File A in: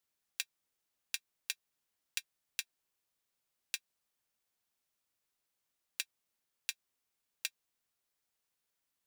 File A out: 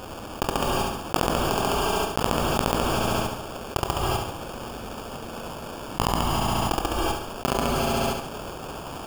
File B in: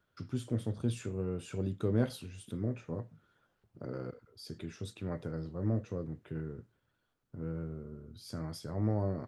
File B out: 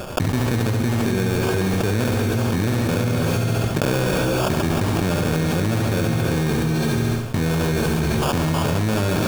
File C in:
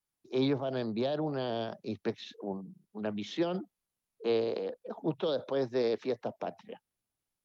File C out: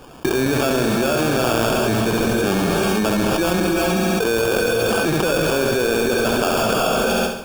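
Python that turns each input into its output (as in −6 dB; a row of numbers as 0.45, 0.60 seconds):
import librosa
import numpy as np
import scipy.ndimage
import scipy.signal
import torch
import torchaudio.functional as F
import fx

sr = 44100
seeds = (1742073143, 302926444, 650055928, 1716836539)

p1 = fx.block_float(x, sr, bits=3)
p2 = 10.0 ** (-24.0 / 20.0) * np.tanh(p1 / 10.0 ** (-24.0 / 20.0))
p3 = p1 + (p2 * 10.0 ** (-6.0 / 20.0))
p4 = fx.sample_hold(p3, sr, seeds[0], rate_hz=2000.0, jitter_pct=0)
p5 = p4 + fx.echo_feedback(p4, sr, ms=69, feedback_pct=52, wet_db=-7.0, dry=0)
p6 = fx.rev_gated(p5, sr, seeds[1], gate_ms=410, shape='rising', drr_db=6.5)
p7 = fx.env_flatten(p6, sr, amount_pct=100)
y = librosa.util.normalize(p7) * 10.0 ** (-6 / 20.0)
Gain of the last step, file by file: +3.5, +1.5, +3.0 decibels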